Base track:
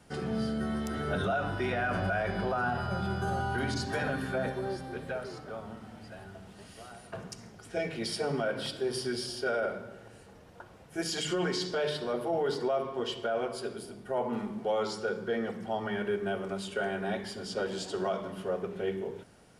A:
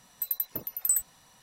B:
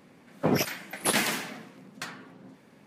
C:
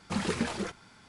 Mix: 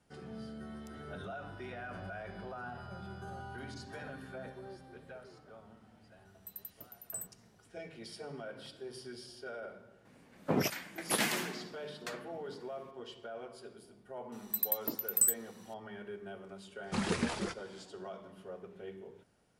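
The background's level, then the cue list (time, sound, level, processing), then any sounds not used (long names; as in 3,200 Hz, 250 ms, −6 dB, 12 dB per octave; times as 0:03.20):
base track −13.5 dB
0:06.25: mix in A −17 dB
0:10.05: mix in B −6 dB
0:14.32: mix in A −2 dB + high-pass with resonance 260 Hz, resonance Q 2.4
0:16.82: mix in C −2.5 dB, fades 0.10 s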